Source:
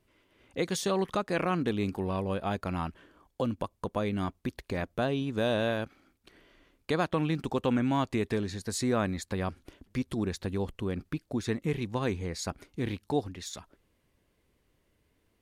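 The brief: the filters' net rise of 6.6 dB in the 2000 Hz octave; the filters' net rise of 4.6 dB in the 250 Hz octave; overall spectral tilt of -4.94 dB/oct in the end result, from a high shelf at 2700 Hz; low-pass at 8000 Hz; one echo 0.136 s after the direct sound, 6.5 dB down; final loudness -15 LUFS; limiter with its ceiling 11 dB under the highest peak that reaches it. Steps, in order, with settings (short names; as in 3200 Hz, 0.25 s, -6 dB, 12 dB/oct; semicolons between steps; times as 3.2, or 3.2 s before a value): LPF 8000 Hz; bell 250 Hz +5.5 dB; bell 2000 Hz +6 dB; high shelf 2700 Hz +6 dB; limiter -23 dBFS; echo 0.136 s -6.5 dB; gain +18 dB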